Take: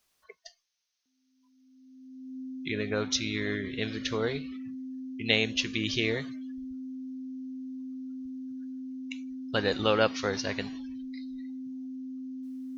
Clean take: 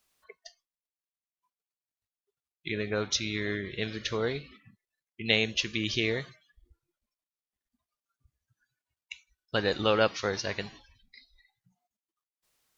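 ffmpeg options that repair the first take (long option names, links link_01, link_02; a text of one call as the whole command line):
ffmpeg -i in.wav -af "bandreject=frequency=260:width=30,agate=range=-21dB:threshold=-58dB" out.wav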